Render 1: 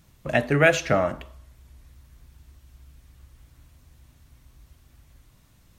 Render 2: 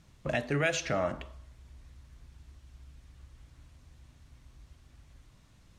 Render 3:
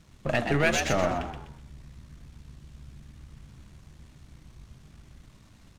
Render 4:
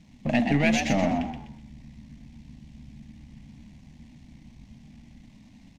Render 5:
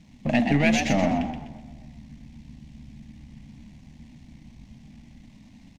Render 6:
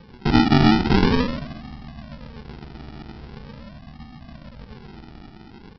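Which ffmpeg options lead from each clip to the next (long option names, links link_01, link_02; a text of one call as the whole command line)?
ffmpeg -i in.wav -filter_complex "[0:a]lowpass=7700,acrossover=split=3400[link_01][link_02];[link_01]alimiter=limit=-17.5dB:level=0:latency=1:release=316[link_03];[link_03][link_02]amix=inputs=2:normalize=0,volume=-2dB" out.wav
ffmpeg -i in.wav -filter_complex "[0:a]aeval=exprs='if(lt(val(0),0),0.447*val(0),val(0))':channel_layout=same,asplit=2[link_01][link_02];[link_02]asplit=4[link_03][link_04][link_05][link_06];[link_03]adelay=125,afreqshift=77,volume=-6dB[link_07];[link_04]adelay=250,afreqshift=154,volume=-15.9dB[link_08];[link_05]adelay=375,afreqshift=231,volume=-25.8dB[link_09];[link_06]adelay=500,afreqshift=308,volume=-35.7dB[link_10];[link_07][link_08][link_09][link_10]amix=inputs=4:normalize=0[link_11];[link_01][link_11]amix=inputs=2:normalize=0,volume=6.5dB" out.wav
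ffmpeg -i in.wav -af "firequalizer=gain_entry='entry(110,0);entry(240,15);entry(370,-5);entry(800,5);entry(1300,-12);entry(2000,5);entry(3500,1);entry(5700,1);entry(9500,-7)':delay=0.05:min_phase=1,volume=-2dB" out.wav
ffmpeg -i in.wav -filter_complex "[0:a]asplit=2[link_01][link_02];[link_02]adelay=260,lowpass=frequency=2100:poles=1,volume=-19.5dB,asplit=2[link_03][link_04];[link_04]adelay=260,lowpass=frequency=2100:poles=1,volume=0.4,asplit=2[link_05][link_06];[link_06]adelay=260,lowpass=frequency=2100:poles=1,volume=0.4[link_07];[link_01][link_03][link_05][link_07]amix=inputs=4:normalize=0,volume=1.5dB" out.wav
ffmpeg -i in.wav -af "tiltshelf=frequency=1200:gain=5,aresample=11025,acrusher=samples=16:mix=1:aa=0.000001:lfo=1:lforange=9.6:lforate=0.43,aresample=44100,volume=1.5dB" out.wav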